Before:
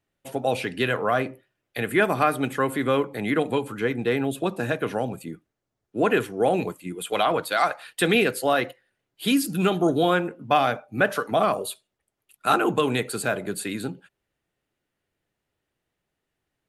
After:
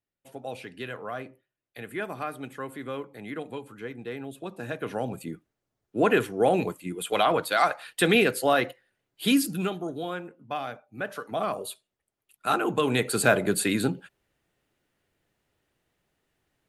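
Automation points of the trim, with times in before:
4.40 s -12.5 dB
5.23 s -0.5 dB
9.42 s -0.5 dB
9.85 s -12.5 dB
10.97 s -12.5 dB
11.70 s -4.5 dB
12.69 s -4.5 dB
13.25 s +5 dB

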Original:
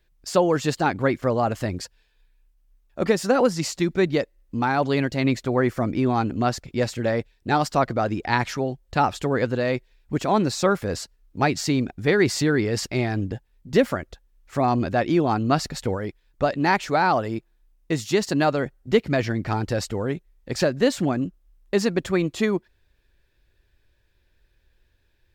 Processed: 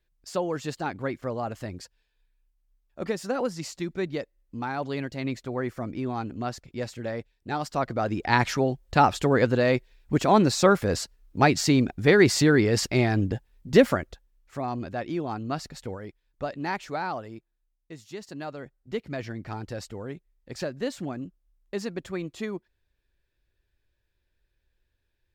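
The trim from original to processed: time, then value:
7.58 s -9 dB
8.45 s +1.5 dB
13.93 s +1.5 dB
14.62 s -10 dB
16.93 s -10 dB
17.97 s -19 dB
19.28 s -10.5 dB

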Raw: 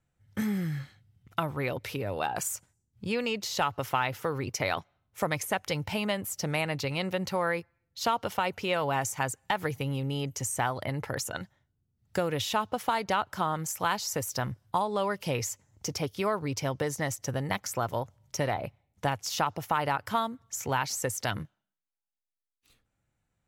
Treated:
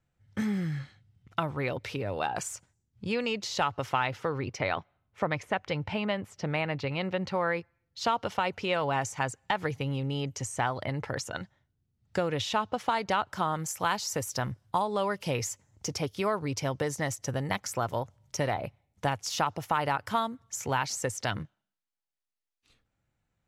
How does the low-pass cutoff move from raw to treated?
3.97 s 7 kHz
4.73 s 3.1 kHz
6.94 s 3.1 kHz
8.04 s 6.4 kHz
12.77 s 6.4 kHz
13.55 s 11 kHz
20.66 s 11 kHz
21.40 s 6.7 kHz

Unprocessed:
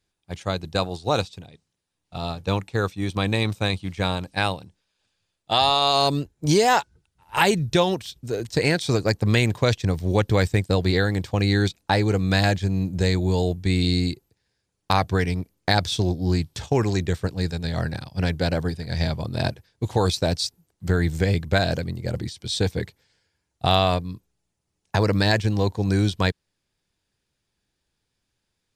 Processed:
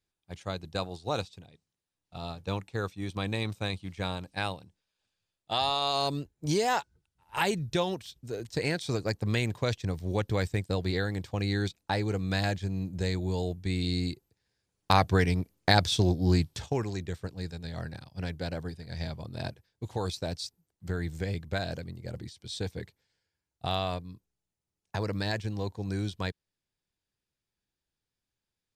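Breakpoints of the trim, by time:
13.82 s -9 dB
14.96 s -2 dB
16.44 s -2 dB
16.88 s -11.5 dB

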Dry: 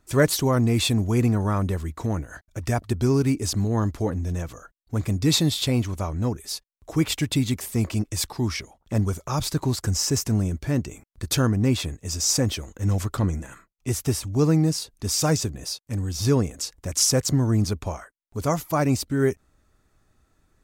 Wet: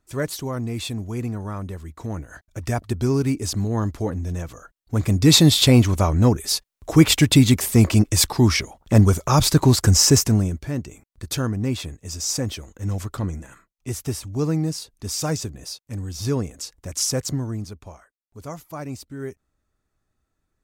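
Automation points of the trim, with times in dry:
1.80 s -7 dB
2.46 s 0 dB
4.52 s 0 dB
5.57 s +9 dB
10.12 s +9 dB
10.71 s -3 dB
17.29 s -3 dB
17.70 s -11 dB

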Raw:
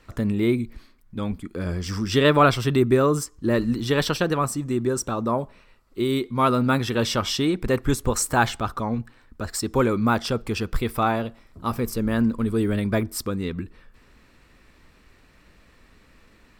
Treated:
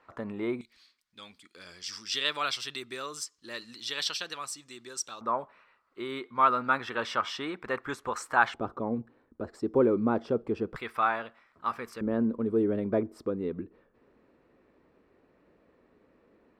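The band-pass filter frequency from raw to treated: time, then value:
band-pass filter, Q 1.3
910 Hz
from 0.61 s 4.4 kHz
from 5.21 s 1.3 kHz
from 8.54 s 400 Hz
from 10.76 s 1.5 kHz
from 12.01 s 440 Hz

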